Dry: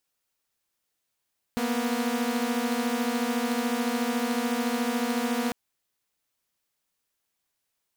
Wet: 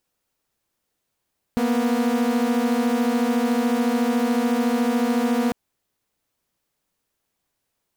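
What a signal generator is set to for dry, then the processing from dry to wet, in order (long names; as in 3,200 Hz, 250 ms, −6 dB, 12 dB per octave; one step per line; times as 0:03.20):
held notes A#3/B3 saw, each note −25.5 dBFS 3.95 s
tilt shelving filter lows +4.5 dB
in parallel at −1 dB: brickwall limiter −23 dBFS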